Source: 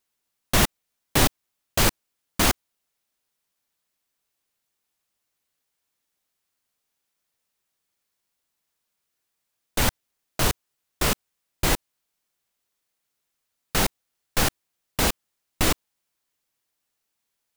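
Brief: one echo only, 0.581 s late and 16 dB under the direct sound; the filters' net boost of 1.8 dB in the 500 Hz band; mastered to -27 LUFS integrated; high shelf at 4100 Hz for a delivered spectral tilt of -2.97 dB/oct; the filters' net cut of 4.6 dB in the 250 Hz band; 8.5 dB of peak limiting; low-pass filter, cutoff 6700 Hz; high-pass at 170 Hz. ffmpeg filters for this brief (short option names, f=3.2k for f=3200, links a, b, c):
-af "highpass=170,lowpass=6.7k,equalizer=f=250:t=o:g=-6,equalizer=f=500:t=o:g=4,highshelf=f=4.1k:g=-6,alimiter=limit=-18dB:level=0:latency=1,aecho=1:1:581:0.158,volume=5.5dB"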